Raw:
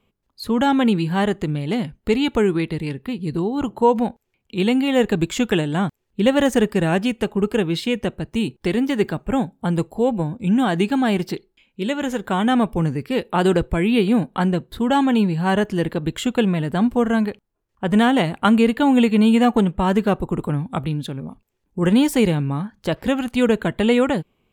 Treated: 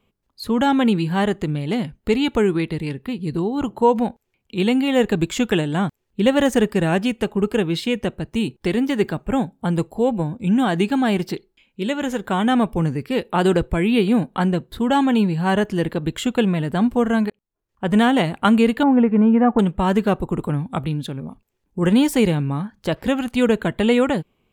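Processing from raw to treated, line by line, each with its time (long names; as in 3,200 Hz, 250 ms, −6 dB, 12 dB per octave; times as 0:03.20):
0:17.30–0:17.86: fade in
0:18.83–0:19.59: low-pass filter 1,700 Hz 24 dB per octave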